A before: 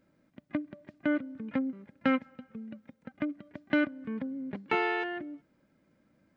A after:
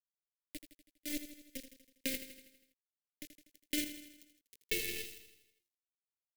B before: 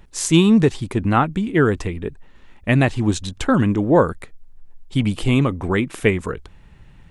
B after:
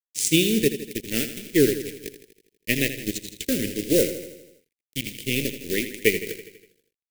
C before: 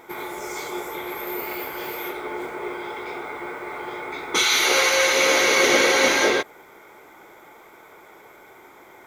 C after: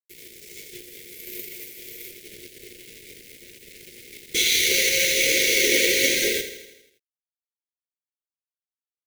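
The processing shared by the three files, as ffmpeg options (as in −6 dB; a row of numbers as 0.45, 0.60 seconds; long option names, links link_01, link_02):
-af "highpass=frequency=86:poles=1,bass=frequency=250:gain=-11,treble=frequency=4000:gain=-3,acrusher=bits=4:mode=log:mix=0:aa=0.000001,crystalizer=i=1:c=0,acrusher=bits=4:mix=0:aa=0.000001,flanger=delay=5.1:depth=8.7:regen=68:speed=1.3:shape=triangular,aeval=exprs='sgn(val(0))*max(abs(val(0))-0.0299,0)':channel_layout=same,asuperstop=centerf=990:order=8:qfactor=0.66,aecho=1:1:81|162|243|324|405|486|567:0.282|0.163|0.0948|0.055|0.0319|0.0185|0.0107,volume=6dB"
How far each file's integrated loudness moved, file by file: −7.0, −5.5, +2.5 LU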